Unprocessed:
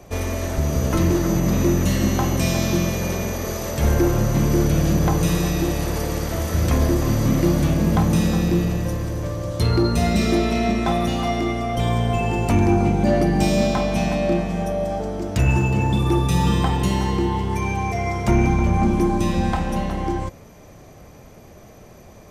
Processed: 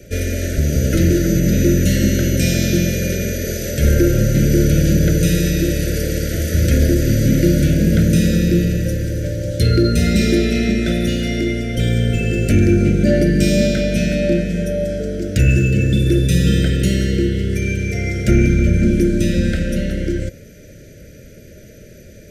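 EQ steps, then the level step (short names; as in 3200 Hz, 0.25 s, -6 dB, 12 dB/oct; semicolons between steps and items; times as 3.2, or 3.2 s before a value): Chebyshev band-stop 650–1400 Hz, order 5; notch 650 Hz, Q 12; +5.0 dB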